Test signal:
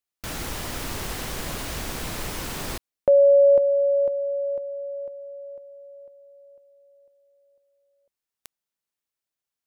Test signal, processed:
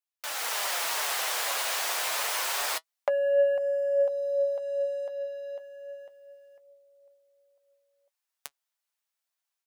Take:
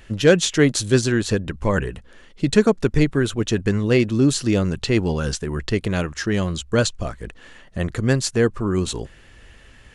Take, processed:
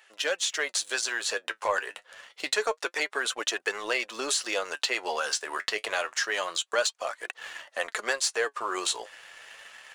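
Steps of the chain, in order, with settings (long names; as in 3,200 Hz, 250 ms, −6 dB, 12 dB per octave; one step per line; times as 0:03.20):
high-pass filter 630 Hz 24 dB per octave
automatic gain control gain up to 9 dB
leveller curve on the samples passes 1
downward compressor 2.5 to 1, threshold −24 dBFS
flanger 0.27 Hz, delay 2.2 ms, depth 8.2 ms, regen +54%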